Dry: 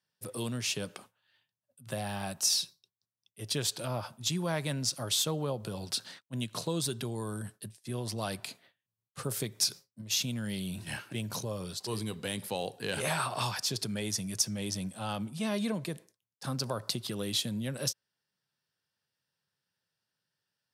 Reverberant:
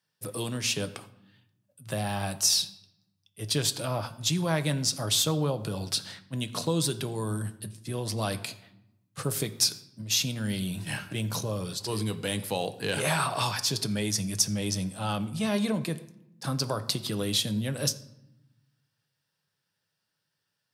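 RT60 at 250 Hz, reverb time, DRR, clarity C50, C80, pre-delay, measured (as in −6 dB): 1.4 s, 0.90 s, 9.0 dB, 16.5 dB, 18.5 dB, 6 ms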